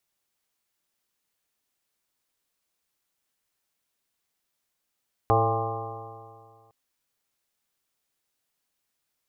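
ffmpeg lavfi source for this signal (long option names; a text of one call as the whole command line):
ffmpeg -f lavfi -i "aevalsrc='0.0708*pow(10,-3*t/2.07)*sin(2*PI*110.1*t)+0.00944*pow(10,-3*t/2.07)*sin(2*PI*220.79*t)+0.0282*pow(10,-3*t/2.07)*sin(2*PI*332.66*t)+0.0668*pow(10,-3*t/2.07)*sin(2*PI*446.29*t)+0.0376*pow(10,-3*t/2.07)*sin(2*PI*562.24*t)+0.0447*pow(10,-3*t/2.07)*sin(2*PI*681.05*t)+0.0891*pow(10,-3*t/2.07)*sin(2*PI*803.24*t)+0.01*pow(10,-3*t/2.07)*sin(2*PI*929.31*t)+0.0562*pow(10,-3*t/2.07)*sin(2*PI*1059.72*t)+0.0355*pow(10,-3*t/2.07)*sin(2*PI*1194.91*t)':duration=1.41:sample_rate=44100" out.wav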